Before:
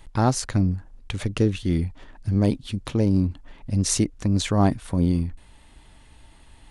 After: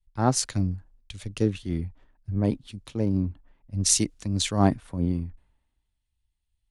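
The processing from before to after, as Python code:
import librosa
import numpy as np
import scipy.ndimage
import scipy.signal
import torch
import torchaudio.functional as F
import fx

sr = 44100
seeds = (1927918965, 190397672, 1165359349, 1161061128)

y = fx.band_widen(x, sr, depth_pct=100)
y = F.gain(torch.from_numpy(y), -5.5).numpy()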